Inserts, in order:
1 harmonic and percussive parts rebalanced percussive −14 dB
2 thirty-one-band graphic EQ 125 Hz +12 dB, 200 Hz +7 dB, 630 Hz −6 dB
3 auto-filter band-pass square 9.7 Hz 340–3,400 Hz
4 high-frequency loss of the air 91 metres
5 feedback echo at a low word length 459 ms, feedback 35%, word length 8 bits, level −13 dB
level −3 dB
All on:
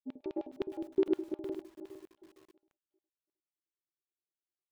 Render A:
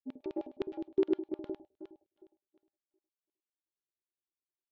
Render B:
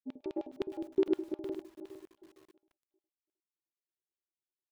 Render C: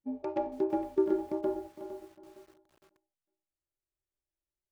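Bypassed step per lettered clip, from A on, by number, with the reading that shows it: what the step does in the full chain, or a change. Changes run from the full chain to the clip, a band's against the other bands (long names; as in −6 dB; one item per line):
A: 5, change in momentary loudness spread +3 LU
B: 4, 4 kHz band +2.0 dB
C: 3, change in momentary loudness spread −3 LU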